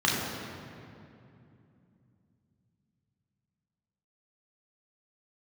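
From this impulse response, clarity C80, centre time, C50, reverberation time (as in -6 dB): 1.5 dB, 0.115 s, 0.0 dB, 2.7 s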